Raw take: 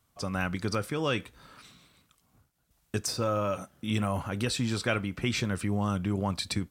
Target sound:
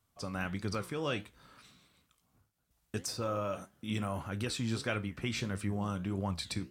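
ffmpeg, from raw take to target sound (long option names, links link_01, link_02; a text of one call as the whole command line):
ffmpeg -i in.wav -af "flanger=delay=9.4:depth=8.5:regen=73:speed=1.6:shape=sinusoidal,volume=-1.5dB" out.wav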